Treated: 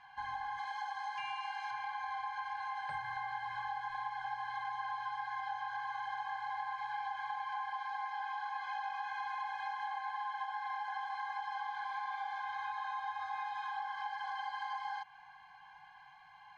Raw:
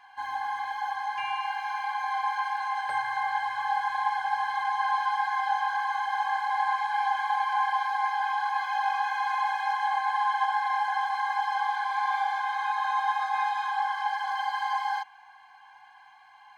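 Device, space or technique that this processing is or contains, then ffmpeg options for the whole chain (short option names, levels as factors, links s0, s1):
jukebox: -filter_complex "[0:a]asettb=1/sr,asplit=3[s0][s1][s2];[s0]atrim=end=0.584[s3];[s1]atrim=start=0.58:end=1.71,asetpts=PTS-STARTPTS,afade=t=in:d=0.004:c=qsin,afade=t=out:st=1.126:d=0.004:c=qsin,bass=f=250:g=-12,treble=f=4000:g=8[s4];[s2]atrim=start=1.706[s5];[s3][s4]acrossfade=d=0.004:c1=hsin:c2=qsin[s6];[s6][s5]acrossfade=d=0.004:c1=qsin:c2=hsin,lowpass=5600,lowshelf=f=230:t=q:w=3:g=9.5,acompressor=threshold=0.02:ratio=5,volume=0.668"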